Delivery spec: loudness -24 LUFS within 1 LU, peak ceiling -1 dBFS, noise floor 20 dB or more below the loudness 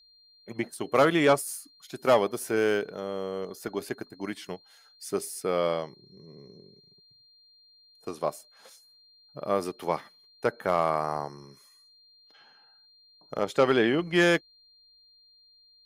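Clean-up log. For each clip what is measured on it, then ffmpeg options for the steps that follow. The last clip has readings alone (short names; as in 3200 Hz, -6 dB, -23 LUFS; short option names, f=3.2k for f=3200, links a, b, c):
steady tone 4200 Hz; tone level -57 dBFS; loudness -27.5 LUFS; peak -9.5 dBFS; loudness target -24.0 LUFS
-> -af "bandreject=f=4.2k:w=30"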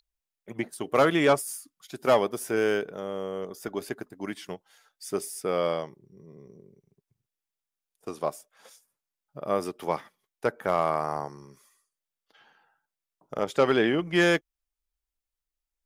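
steady tone none; loudness -27.5 LUFS; peak -9.5 dBFS; loudness target -24.0 LUFS
-> -af "volume=3.5dB"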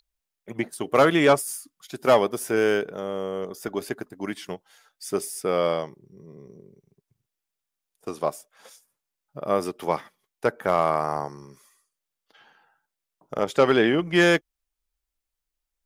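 loudness -24.0 LUFS; peak -6.0 dBFS; noise floor -85 dBFS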